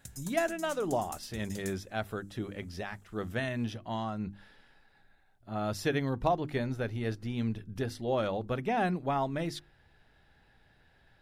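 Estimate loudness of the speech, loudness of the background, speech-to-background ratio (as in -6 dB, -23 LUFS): -34.0 LUFS, -46.5 LUFS, 12.5 dB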